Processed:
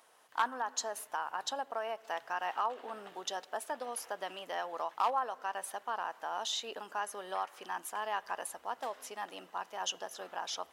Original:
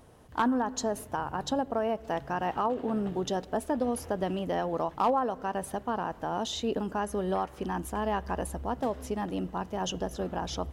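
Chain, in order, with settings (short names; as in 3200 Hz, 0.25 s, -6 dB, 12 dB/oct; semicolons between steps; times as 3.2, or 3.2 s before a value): HPF 970 Hz 12 dB/oct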